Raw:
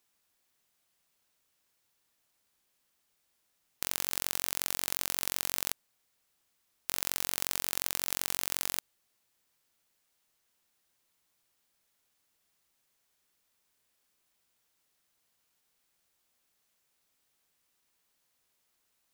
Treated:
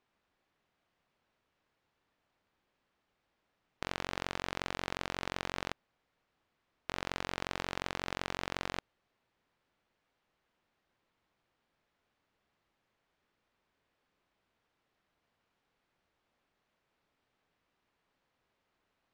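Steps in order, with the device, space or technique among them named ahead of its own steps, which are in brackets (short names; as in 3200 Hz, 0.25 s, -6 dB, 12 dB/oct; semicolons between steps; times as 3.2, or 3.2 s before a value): phone in a pocket (LPF 3700 Hz 12 dB/oct; high shelf 2400 Hz -11 dB); gain +6 dB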